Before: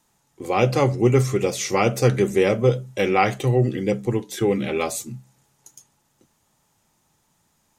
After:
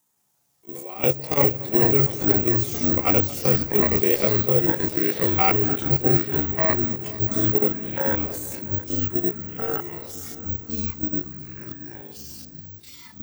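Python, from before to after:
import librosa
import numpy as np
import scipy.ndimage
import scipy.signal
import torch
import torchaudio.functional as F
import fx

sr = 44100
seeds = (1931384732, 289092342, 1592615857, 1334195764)

p1 = scipy.signal.sosfilt(scipy.signal.butter(2, 80.0, 'highpass', fs=sr, output='sos'), x)
p2 = fx.high_shelf(p1, sr, hz=8200.0, db=9.5)
p3 = fx.level_steps(p2, sr, step_db=18)
p4 = fx.stretch_grains(p3, sr, factor=1.7, grain_ms=69.0)
p5 = fx.echo_pitch(p4, sr, ms=177, semitones=-3, count=3, db_per_echo=-3.0)
p6 = p5 + fx.echo_heads(p5, sr, ms=229, heads='all three', feedback_pct=49, wet_db=-21, dry=0)
p7 = (np.kron(p6[::2], np.eye(2)[0]) * 2)[:len(p6)]
y = p7 * 10.0 ** (-1.0 / 20.0)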